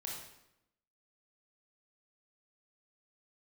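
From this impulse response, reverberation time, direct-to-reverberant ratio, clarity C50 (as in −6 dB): 0.85 s, −3.0 dB, 1.5 dB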